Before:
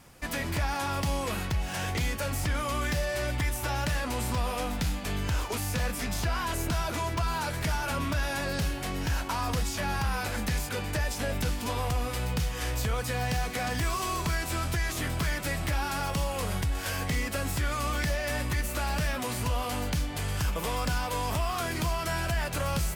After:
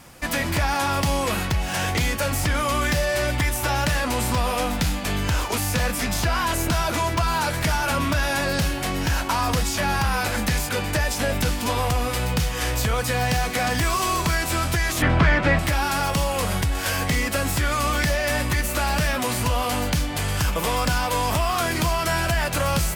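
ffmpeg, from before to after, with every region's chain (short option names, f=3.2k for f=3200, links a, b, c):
-filter_complex "[0:a]asettb=1/sr,asplit=3[a][b][c];[a]atrim=end=15.024[d];[b]atrim=start=15.02:end=15.59,asetpts=PTS-STARTPTS,afade=t=in:d=0.004:c=qsin,afade=t=out:st=0.566:d=0.004:c=qsin,lowpass=2.3k,acontrast=58[e];[c]atrim=start=15.586[f];[d][e]acrossfade=d=0.004:c1=hsin:c2=qsin[g];[g][f]acrossfade=d=0.004:c1=qsin:c2=hsin,lowshelf=f=130:g=-4,bandreject=f=420:w=13,volume=8.5dB"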